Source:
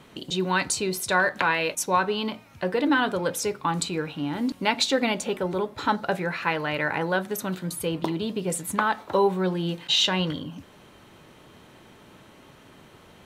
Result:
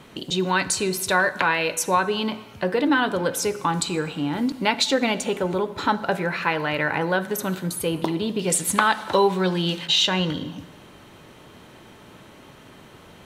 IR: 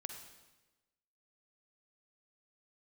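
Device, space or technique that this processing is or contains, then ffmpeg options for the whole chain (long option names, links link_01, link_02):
compressed reverb return: -filter_complex "[0:a]asplit=2[link_01][link_02];[1:a]atrim=start_sample=2205[link_03];[link_02][link_03]afir=irnorm=-1:irlink=0,acompressor=threshold=-29dB:ratio=6,volume=-1dB[link_04];[link_01][link_04]amix=inputs=2:normalize=0,asettb=1/sr,asplit=3[link_05][link_06][link_07];[link_05]atrim=end=8.394[link_08];[link_06]atrim=start=8.39:end=9.86,asetpts=PTS-STARTPTS,afade=type=in:duration=0.004:curve=qsin,afade=type=out:start_time=1.466:duration=0.004:curve=qsin,equalizer=frequency=4600:width_type=o:width=2.6:gain=9[link_09];[link_07]atrim=start=9.856[link_10];[link_08][link_09]acrossfade=duration=0.004:curve1=hsin:curve2=qsin[link_11];[link_11][link_10]acrossfade=duration=0.004:curve1=qsin:curve2=hsin"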